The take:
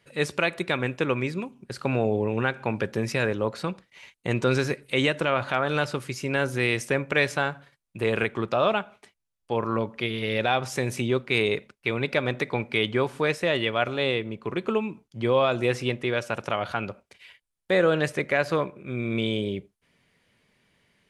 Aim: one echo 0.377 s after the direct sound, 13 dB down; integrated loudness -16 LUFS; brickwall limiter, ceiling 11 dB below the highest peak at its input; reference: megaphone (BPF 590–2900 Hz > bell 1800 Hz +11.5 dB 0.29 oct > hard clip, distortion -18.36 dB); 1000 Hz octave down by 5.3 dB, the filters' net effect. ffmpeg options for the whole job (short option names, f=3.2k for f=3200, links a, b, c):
-af "equalizer=f=1k:t=o:g=-7.5,alimiter=limit=-20dB:level=0:latency=1,highpass=590,lowpass=2.9k,equalizer=f=1.8k:t=o:w=0.29:g=11.5,aecho=1:1:377:0.224,asoftclip=type=hard:threshold=-25dB,volume=19dB"